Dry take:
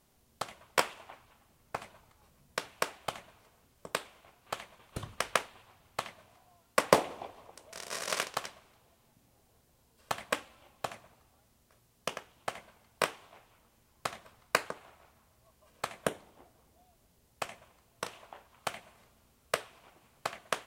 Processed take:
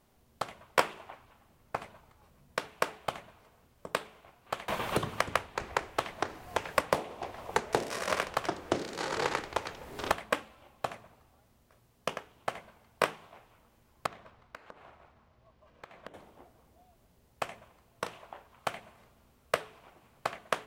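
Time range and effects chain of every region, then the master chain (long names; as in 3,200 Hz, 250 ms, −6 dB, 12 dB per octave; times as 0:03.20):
0:04.68–0:10.12: delay with pitch and tempo change per echo 236 ms, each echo −4 semitones, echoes 2, each echo −6 dB + multiband upward and downward compressor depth 100%
0:14.06–0:16.14: running median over 5 samples + downward compressor, threshold −47 dBFS + high-shelf EQ 11,000 Hz −10.5 dB
whole clip: parametric band 8,900 Hz −7.5 dB 2.7 octaves; hum removal 54.15 Hz, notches 8; level +3.5 dB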